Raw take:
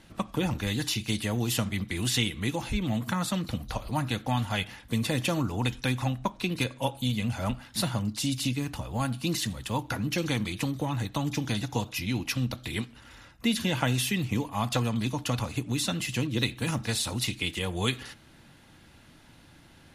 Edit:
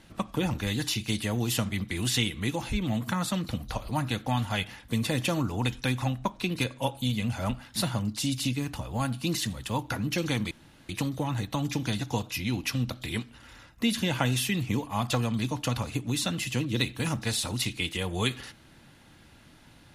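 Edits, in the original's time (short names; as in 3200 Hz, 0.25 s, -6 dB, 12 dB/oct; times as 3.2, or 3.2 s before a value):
10.51 insert room tone 0.38 s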